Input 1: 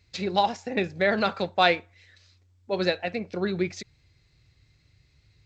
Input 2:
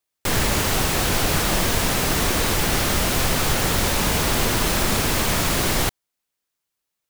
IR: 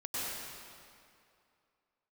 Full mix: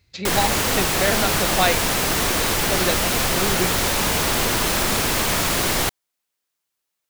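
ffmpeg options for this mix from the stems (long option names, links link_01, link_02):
-filter_complex "[0:a]volume=0.5dB[link_01];[1:a]lowshelf=frequency=240:gain=-6,volume=1.5dB[link_02];[link_01][link_02]amix=inputs=2:normalize=0"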